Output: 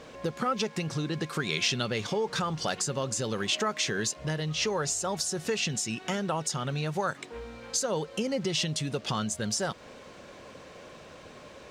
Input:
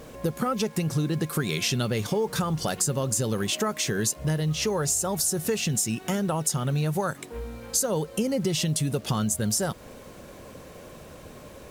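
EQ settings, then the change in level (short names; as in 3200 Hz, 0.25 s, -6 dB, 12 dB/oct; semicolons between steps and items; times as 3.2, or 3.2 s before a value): air absorption 140 m; tilt +2.5 dB/oct; 0.0 dB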